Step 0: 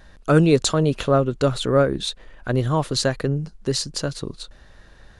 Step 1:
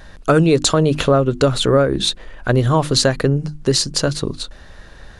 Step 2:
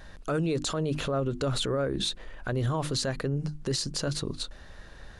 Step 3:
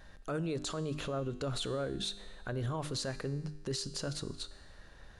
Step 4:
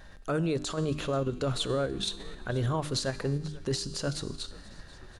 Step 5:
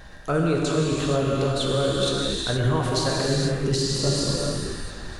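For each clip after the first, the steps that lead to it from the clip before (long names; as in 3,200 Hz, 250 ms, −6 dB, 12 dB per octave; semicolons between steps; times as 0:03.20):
mains-hum notches 50/100/150/200/250/300/350 Hz; downward compressor 4 to 1, threshold −19 dBFS, peak gain reduction 7 dB; level +8.5 dB
brickwall limiter −13.5 dBFS, peak gain reduction 11 dB; level −7 dB
tuned comb filter 100 Hz, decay 1.3 s, harmonics all, mix 60%
in parallel at +3 dB: output level in coarse steps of 12 dB; on the sum: echo with shifted repeats 486 ms, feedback 60%, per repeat −100 Hz, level −20 dB
healed spectral selection 0:03.86–0:04.81, 1,400–8,200 Hz both; reverb whose tail is shaped and stops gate 500 ms flat, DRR −3.5 dB; speech leveller within 4 dB 0.5 s; level +3.5 dB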